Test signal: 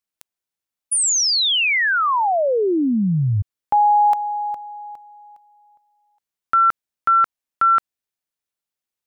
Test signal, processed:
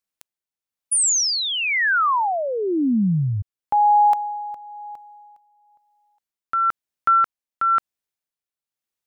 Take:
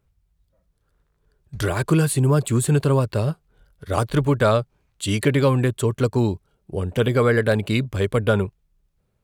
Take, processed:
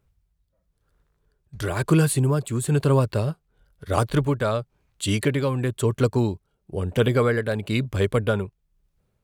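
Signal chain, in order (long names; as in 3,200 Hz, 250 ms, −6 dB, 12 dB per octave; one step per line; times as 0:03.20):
amplitude tremolo 1 Hz, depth 52%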